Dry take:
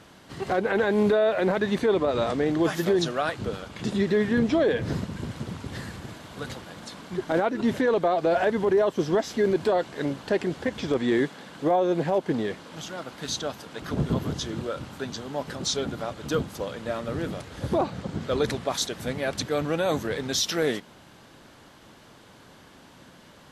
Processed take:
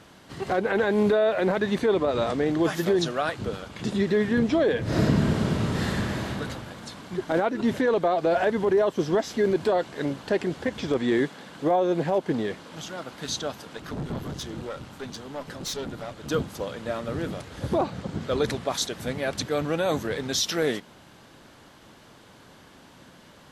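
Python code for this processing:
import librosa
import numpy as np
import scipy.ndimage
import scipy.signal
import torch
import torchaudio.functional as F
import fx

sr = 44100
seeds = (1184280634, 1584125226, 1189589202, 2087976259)

y = fx.reverb_throw(x, sr, start_s=4.83, length_s=1.45, rt60_s=1.9, drr_db=-9.5)
y = fx.tube_stage(y, sr, drive_db=27.0, bias=0.55, at=(13.77, 16.28))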